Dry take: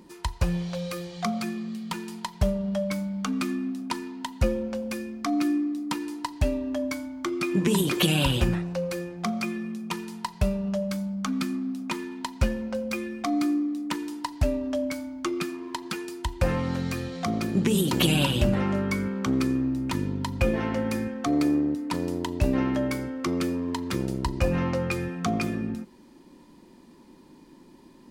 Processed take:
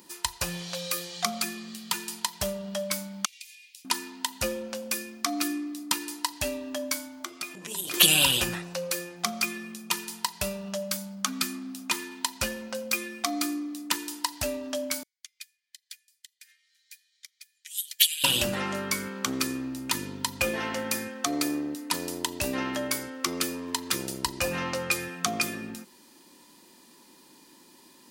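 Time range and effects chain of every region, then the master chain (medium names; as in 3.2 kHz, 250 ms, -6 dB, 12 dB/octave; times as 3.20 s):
3.25–3.85 s: steep high-pass 2.1 kHz 72 dB/octave + treble shelf 11 kHz -5.5 dB + compression 3:1, threshold -53 dBFS
7.20–7.94 s: peaking EQ 650 Hz +8.5 dB 0.49 oct + compression 10:1, threshold -32 dBFS + hum notches 50/100/150/200/250/300/350 Hz
15.03–18.24 s: steep high-pass 1.8 kHz 48 dB/octave + band-stop 2.7 kHz, Q 8.6 + upward expansion 2.5:1, over -44 dBFS
whole clip: tilt EQ +4 dB/octave; band-stop 2.2 kHz, Q 23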